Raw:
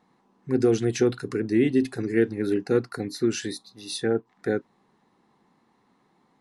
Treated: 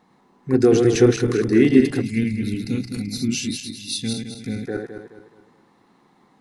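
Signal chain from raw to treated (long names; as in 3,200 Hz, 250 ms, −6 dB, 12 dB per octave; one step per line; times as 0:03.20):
feedback delay that plays each chunk backwards 106 ms, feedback 60%, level −4.5 dB
gain on a spectral selection 0:02.01–0:04.67, 300–2,000 Hz −19 dB
level +5.5 dB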